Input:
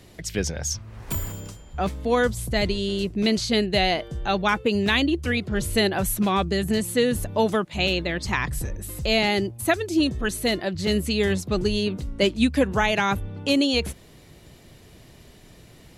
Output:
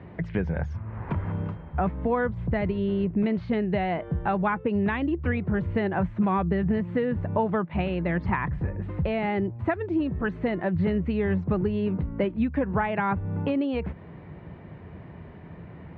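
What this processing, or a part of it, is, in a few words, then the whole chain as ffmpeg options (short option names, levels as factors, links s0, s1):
bass amplifier: -af "acompressor=threshold=0.0355:ratio=4,highpass=64,equalizer=f=84:t=q:w=4:g=7,equalizer=f=170:t=q:w=4:g=8,equalizer=f=940:t=q:w=4:g=5,lowpass=f=2000:w=0.5412,lowpass=f=2000:w=1.3066,volume=1.68"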